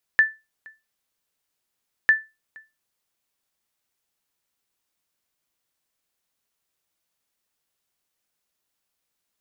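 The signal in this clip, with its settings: sonar ping 1.76 kHz, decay 0.24 s, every 1.90 s, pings 2, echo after 0.47 s, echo -28 dB -8 dBFS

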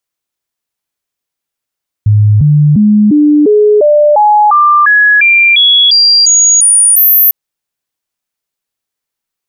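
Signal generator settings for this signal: stepped sine 105 Hz up, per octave 2, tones 15, 0.35 s, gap 0.00 s -3 dBFS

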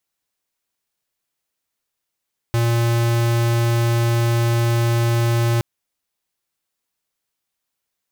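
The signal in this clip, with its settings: tone square 117 Hz -17.5 dBFS 3.07 s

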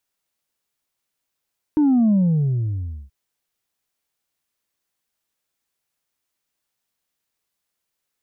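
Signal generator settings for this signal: sub drop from 310 Hz, over 1.33 s, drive 1.5 dB, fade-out 0.98 s, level -13.5 dB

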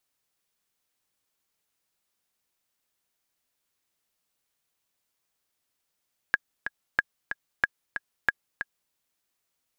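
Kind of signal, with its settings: metronome 185 bpm, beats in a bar 2, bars 4, 1.65 kHz, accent 9.5 dB -7.5 dBFS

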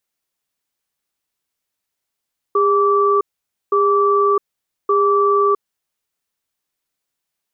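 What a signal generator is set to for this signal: cadence 405 Hz, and 1.16 kHz, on 0.66 s, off 0.51 s, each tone -14.5 dBFS 3.05 s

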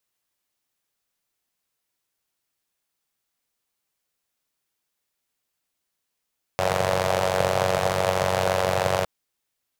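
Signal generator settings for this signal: four-cylinder engine model, steady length 2.46 s, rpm 2800, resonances 130/570 Hz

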